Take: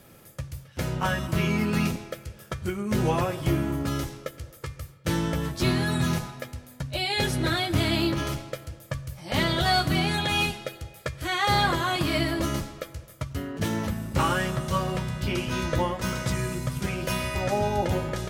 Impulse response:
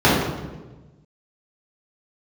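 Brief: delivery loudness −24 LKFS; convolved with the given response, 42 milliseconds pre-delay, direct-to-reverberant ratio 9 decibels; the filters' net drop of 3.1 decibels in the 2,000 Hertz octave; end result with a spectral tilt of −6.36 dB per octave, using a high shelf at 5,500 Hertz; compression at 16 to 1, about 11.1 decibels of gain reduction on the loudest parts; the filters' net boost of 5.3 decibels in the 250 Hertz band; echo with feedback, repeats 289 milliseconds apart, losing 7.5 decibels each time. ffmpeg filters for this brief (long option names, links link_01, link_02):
-filter_complex "[0:a]equalizer=frequency=250:width_type=o:gain=7.5,equalizer=frequency=2000:width_type=o:gain=-3,highshelf=frequency=5500:gain=-8,acompressor=threshold=-27dB:ratio=16,aecho=1:1:289|578|867|1156|1445:0.422|0.177|0.0744|0.0312|0.0131,asplit=2[link_01][link_02];[1:a]atrim=start_sample=2205,adelay=42[link_03];[link_02][link_03]afir=irnorm=-1:irlink=0,volume=-34.5dB[link_04];[link_01][link_04]amix=inputs=2:normalize=0,volume=5dB"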